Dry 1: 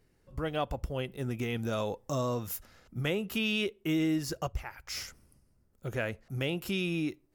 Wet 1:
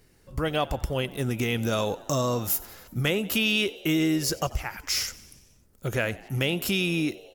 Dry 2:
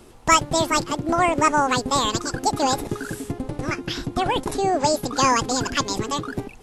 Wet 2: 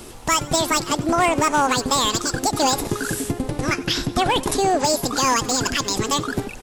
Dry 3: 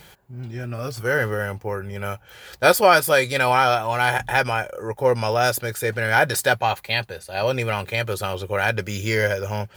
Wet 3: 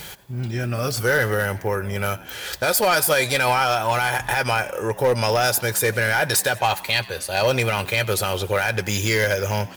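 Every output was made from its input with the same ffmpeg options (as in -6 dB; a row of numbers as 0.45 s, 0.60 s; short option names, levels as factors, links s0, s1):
-filter_complex "[0:a]highshelf=f=2700:g=7,asplit=2[s0][s1];[s1]acompressor=threshold=0.0251:ratio=6,volume=1.41[s2];[s0][s2]amix=inputs=2:normalize=0,alimiter=limit=0.422:level=0:latency=1:release=82,volume=4.22,asoftclip=hard,volume=0.237,asplit=7[s3][s4][s5][s6][s7][s8][s9];[s4]adelay=92,afreqshift=76,volume=0.0891[s10];[s5]adelay=184,afreqshift=152,volume=0.0582[s11];[s6]adelay=276,afreqshift=228,volume=0.0376[s12];[s7]adelay=368,afreqshift=304,volume=0.0245[s13];[s8]adelay=460,afreqshift=380,volume=0.0158[s14];[s9]adelay=552,afreqshift=456,volume=0.0104[s15];[s3][s10][s11][s12][s13][s14][s15]amix=inputs=7:normalize=0"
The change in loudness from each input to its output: +6.5 LU, +1.5 LU, +0.5 LU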